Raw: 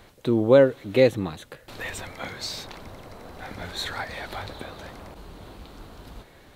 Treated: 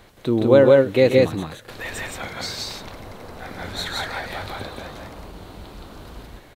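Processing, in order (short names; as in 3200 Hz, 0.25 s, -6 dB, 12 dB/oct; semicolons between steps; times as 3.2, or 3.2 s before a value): loudspeakers at several distances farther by 45 m -10 dB, 58 m -1 dB; gain +1.5 dB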